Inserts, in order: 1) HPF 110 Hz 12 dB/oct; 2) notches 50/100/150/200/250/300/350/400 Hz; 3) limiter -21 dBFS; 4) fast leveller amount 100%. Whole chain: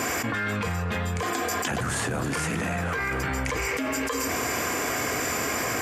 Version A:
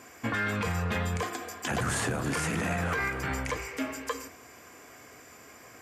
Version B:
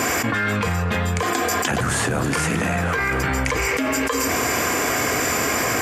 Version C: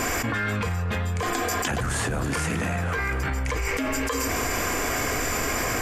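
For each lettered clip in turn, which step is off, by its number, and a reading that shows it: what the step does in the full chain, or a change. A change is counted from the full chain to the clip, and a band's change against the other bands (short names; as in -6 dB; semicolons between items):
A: 4, crest factor change -1.5 dB; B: 3, mean gain reduction 2.0 dB; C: 1, 125 Hz band +2.5 dB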